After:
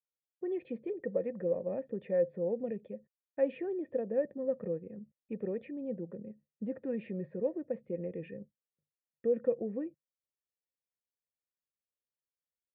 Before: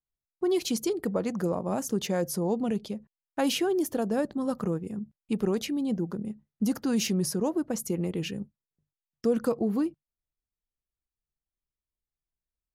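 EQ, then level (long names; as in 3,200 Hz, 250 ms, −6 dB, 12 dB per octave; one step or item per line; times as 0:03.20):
formant resonators in series e
high-pass filter 110 Hz 12 dB per octave
low-shelf EQ 320 Hz +10.5 dB
0.0 dB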